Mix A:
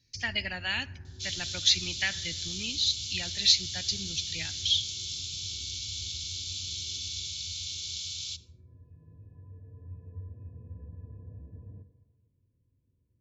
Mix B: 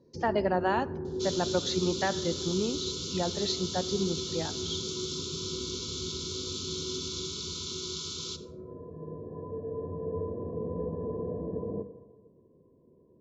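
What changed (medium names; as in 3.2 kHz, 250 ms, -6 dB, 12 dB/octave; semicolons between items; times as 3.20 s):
speech -9.0 dB; second sound: send +7.0 dB; master: remove FFT filter 110 Hz 0 dB, 180 Hz -20 dB, 270 Hz -17 dB, 400 Hz -30 dB, 710 Hz -24 dB, 1.1 kHz -25 dB, 2.3 kHz +7 dB, 3.7 kHz +3 dB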